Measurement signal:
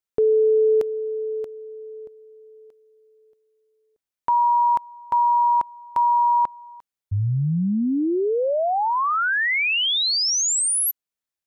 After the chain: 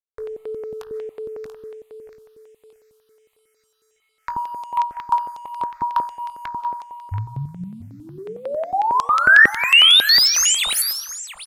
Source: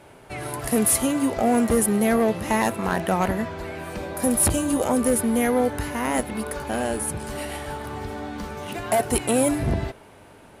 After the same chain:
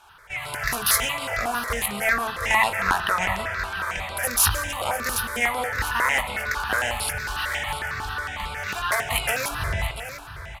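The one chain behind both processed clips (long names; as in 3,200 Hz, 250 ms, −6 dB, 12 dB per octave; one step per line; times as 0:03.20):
running median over 5 samples
single-tap delay 686 ms −14 dB
comb and all-pass reverb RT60 1.1 s, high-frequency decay 0.6×, pre-delay 110 ms, DRR 16 dB
automatic gain control gain up to 6.5 dB
double-tracking delay 21 ms −10.5 dB
downward compressor 5 to 1, threshold −13 dBFS
bit reduction 11 bits
parametric band 1,400 Hz +10 dB 2.2 octaves
downsampling to 32,000 Hz
guitar amp tone stack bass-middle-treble 10-0-10
hum removal 56.21 Hz, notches 32
step-sequenced phaser 11 Hz 540–6,100 Hz
level +4.5 dB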